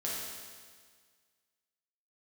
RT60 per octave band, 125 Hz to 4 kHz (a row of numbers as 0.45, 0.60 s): 1.7, 1.7, 1.7, 1.7, 1.7, 1.7 s